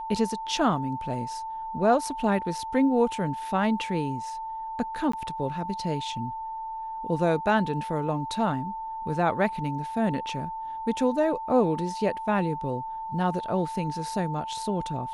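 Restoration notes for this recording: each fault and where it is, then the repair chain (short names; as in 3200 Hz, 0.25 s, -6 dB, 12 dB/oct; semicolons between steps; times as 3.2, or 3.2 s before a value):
tone 890 Hz -32 dBFS
5.12–5.13 gap 14 ms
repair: notch 890 Hz, Q 30; interpolate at 5.12, 14 ms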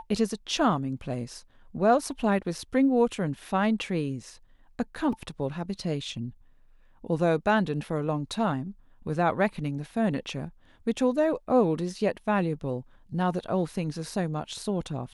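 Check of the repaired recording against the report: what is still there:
none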